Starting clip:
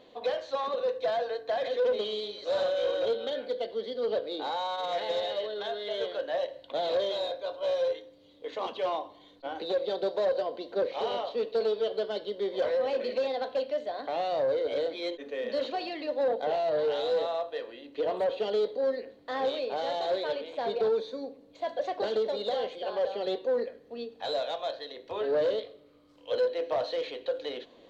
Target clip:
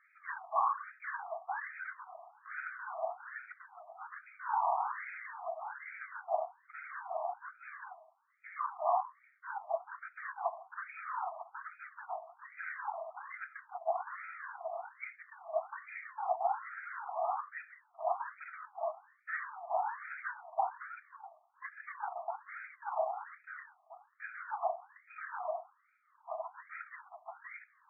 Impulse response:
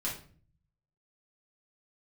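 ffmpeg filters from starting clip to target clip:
-af "afftfilt=real='hypot(re,im)*cos(2*PI*random(0))':imag='hypot(re,im)*sin(2*PI*random(1))':win_size=512:overlap=0.75,afftfilt=real='re*between(b*sr/4096,340,3000)':imag='im*between(b*sr/4096,340,3000)':win_size=4096:overlap=0.75,afftfilt=real='re*between(b*sr/1024,880*pow(1800/880,0.5+0.5*sin(2*PI*1.2*pts/sr))/1.41,880*pow(1800/880,0.5+0.5*sin(2*PI*1.2*pts/sr))*1.41)':imag='im*between(b*sr/1024,880*pow(1800/880,0.5+0.5*sin(2*PI*1.2*pts/sr))/1.41,880*pow(1800/880,0.5+0.5*sin(2*PI*1.2*pts/sr))*1.41)':win_size=1024:overlap=0.75,volume=9.5dB"

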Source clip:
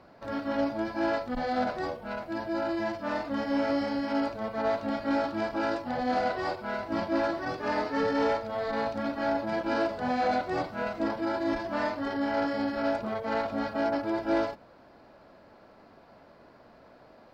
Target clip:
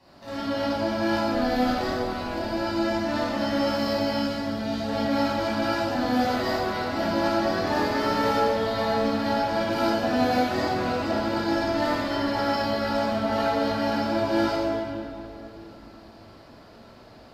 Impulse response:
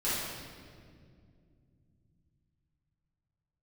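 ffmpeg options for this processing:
-filter_complex "[0:a]asettb=1/sr,asplit=3[link_01][link_02][link_03];[link_01]atrim=end=4.134[link_04];[link_02]atrim=start=4.13:end=4.84,asetpts=PTS-STARTPTS,afade=type=in:duration=0.004:curve=qsin,afade=type=out:start_time=0.706:duration=0.004:curve=qsin,equalizer=frequency=1100:width_type=o:width=2.2:gain=-9[link_05];[link_03]atrim=start=4.836[link_06];[link_04][link_05]acrossfade=duration=0.004:curve1=hsin:curve2=qsin[link_07];[link_07][link_06]acrossfade=duration=0.004:curve1=qsin:curve2=hsin,acrossover=split=450|3400[link_08][link_09][link_10];[link_10]aeval=exprs='0.0141*sin(PI/2*2.82*val(0)/0.0141)':channel_layout=same[link_11];[link_08][link_09][link_11]amix=inputs=3:normalize=0[link_12];[1:a]atrim=start_sample=2205,asetrate=29547,aresample=44100[link_13];[link_12][link_13]afir=irnorm=-1:irlink=0,volume=-7.5dB"

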